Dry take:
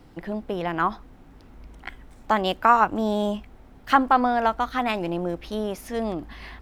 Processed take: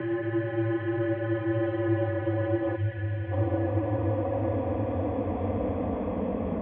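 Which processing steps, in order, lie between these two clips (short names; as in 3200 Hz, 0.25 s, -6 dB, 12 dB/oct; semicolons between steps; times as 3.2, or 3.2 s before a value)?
Paulstretch 30×, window 0.25 s, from 5.92; mistuned SSB -120 Hz 210–2600 Hz; spectral gain 2.76–3.32, 220–1400 Hz -13 dB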